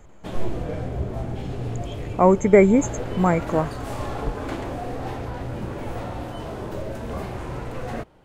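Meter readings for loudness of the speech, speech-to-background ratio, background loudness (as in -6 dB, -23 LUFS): -19.0 LUFS, 12.5 dB, -31.5 LUFS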